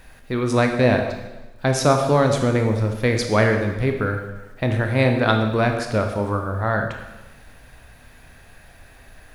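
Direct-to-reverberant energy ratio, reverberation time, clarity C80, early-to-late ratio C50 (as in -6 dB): 4.0 dB, 1.1 s, 8.0 dB, 6.0 dB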